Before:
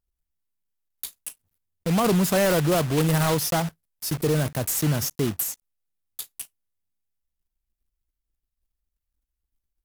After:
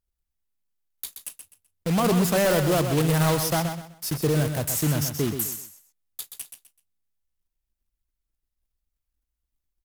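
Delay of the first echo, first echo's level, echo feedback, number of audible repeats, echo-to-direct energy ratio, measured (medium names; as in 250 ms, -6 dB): 127 ms, -8.0 dB, 27%, 3, -7.5 dB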